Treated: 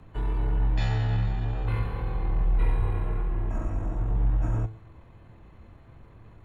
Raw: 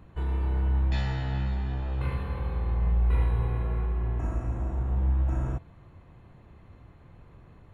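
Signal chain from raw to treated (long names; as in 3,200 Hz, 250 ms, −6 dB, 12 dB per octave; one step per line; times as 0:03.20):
frequency shifter −19 Hz
tuned comb filter 110 Hz, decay 0.57 s, harmonics all, mix 60%
tempo change 1.2×
level +8.5 dB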